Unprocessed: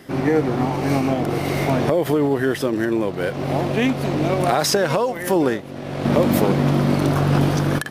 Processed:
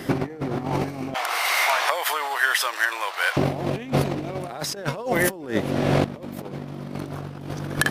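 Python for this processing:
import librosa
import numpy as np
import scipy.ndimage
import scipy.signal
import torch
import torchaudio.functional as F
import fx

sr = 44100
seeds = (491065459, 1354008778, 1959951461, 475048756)

y = fx.highpass(x, sr, hz=950.0, slope=24, at=(1.14, 3.37))
y = fx.over_compress(y, sr, threshold_db=-26.0, ratio=-0.5)
y = y * librosa.db_to_amplitude(2.0)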